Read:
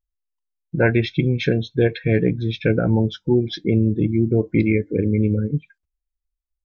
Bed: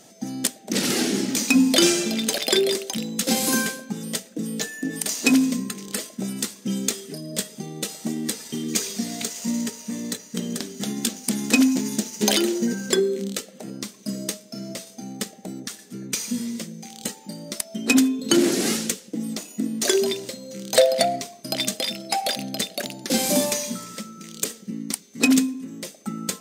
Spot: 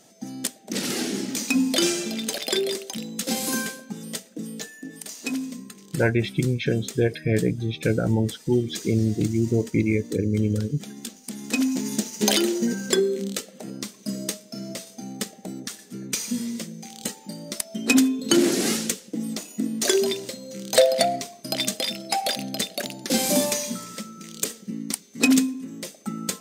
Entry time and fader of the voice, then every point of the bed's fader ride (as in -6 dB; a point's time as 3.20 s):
5.20 s, -4.0 dB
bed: 4.39 s -4.5 dB
4.94 s -11 dB
11.29 s -11 dB
11.93 s -0.5 dB